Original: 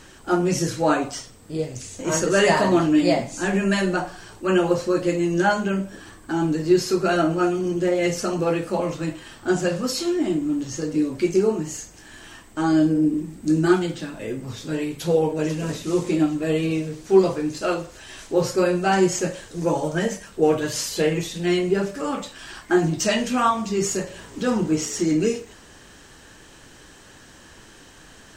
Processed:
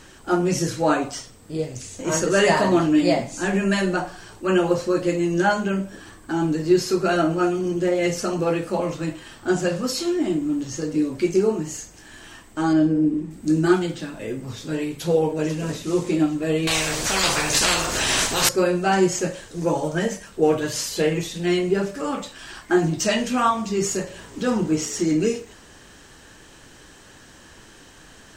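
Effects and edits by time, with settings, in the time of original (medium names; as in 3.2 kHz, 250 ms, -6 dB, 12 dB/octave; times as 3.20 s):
12.73–13.31 s: low-pass 2.8 kHz 6 dB/octave
16.67–18.49 s: spectrum-flattening compressor 10:1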